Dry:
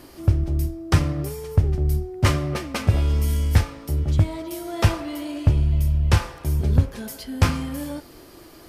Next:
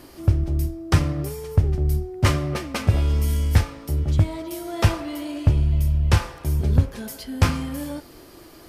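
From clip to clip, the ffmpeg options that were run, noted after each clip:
-af anull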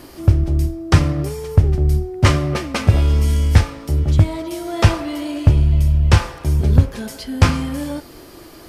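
-filter_complex "[0:a]acrossover=split=9600[a][b];[b]acompressor=threshold=-54dB:ratio=4:attack=1:release=60[c];[a][c]amix=inputs=2:normalize=0,volume=5.5dB"

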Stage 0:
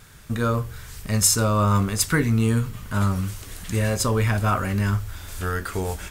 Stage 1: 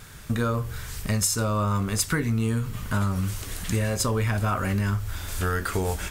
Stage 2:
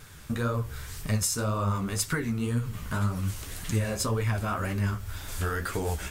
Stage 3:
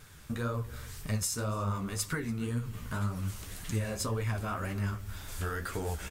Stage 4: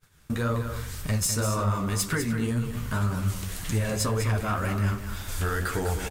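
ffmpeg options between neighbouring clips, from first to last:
-af "acompressor=threshold=-25dB:ratio=6,volume=3.5dB"
-af "flanger=delay=6.1:depth=9.4:regen=30:speed=1.9:shape=triangular"
-filter_complex "[0:a]asplit=2[a][b];[b]adelay=285.7,volume=-19dB,highshelf=f=4k:g=-6.43[c];[a][c]amix=inputs=2:normalize=0,volume=-5dB"
-af "aeval=exprs='0.126*sin(PI/2*1.78*val(0)/0.126)':c=same,agate=range=-33dB:threshold=-33dB:ratio=3:detection=peak,aecho=1:1:201:0.376,volume=-1.5dB"

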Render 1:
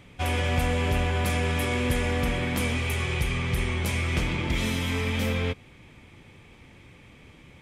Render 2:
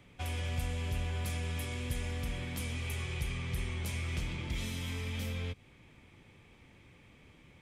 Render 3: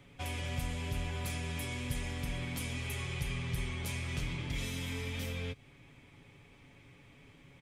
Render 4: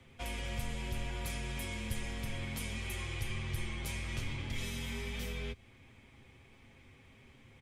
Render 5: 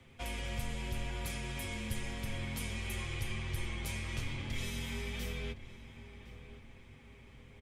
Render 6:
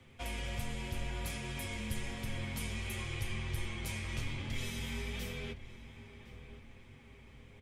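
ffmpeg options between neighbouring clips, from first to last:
-filter_complex "[0:a]acrossover=split=160|3000[a][b][c];[b]acompressor=threshold=-35dB:ratio=6[d];[a][d][c]amix=inputs=3:normalize=0,volume=-8dB"
-af "aecho=1:1:7.2:0.48"
-af "afreqshift=-30,volume=-1dB"
-filter_complex "[0:a]asplit=2[a][b];[b]adelay=1063,lowpass=f=2.2k:p=1,volume=-13dB,asplit=2[c][d];[d]adelay=1063,lowpass=f=2.2k:p=1,volume=0.5,asplit=2[e][f];[f]adelay=1063,lowpass=f=2.2k:p=1,volume=0.5,asplit=2[g][h];[h]adelay=1063,lowpass=f=2.2k:p=1,volume=0.5,asplit=2[i][j];[j]adelay=1063,lowpass=f=2.2k:p=1,volume=0.5[k];[a][c][e][g][i][k]amix=inputs=6:normalize=0"
-af "flanger=delay=7.9:depth=6:regen=-65:speed=1.3:shape=sinusoidal,volume=4dB"

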